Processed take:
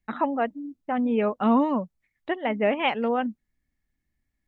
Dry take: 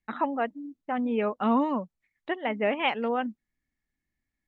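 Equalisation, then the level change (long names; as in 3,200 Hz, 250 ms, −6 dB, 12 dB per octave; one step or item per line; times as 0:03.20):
low-shelf EQ 180 Hz +8 dB
parametric band 610 Hz +2 dB
+1.0 dB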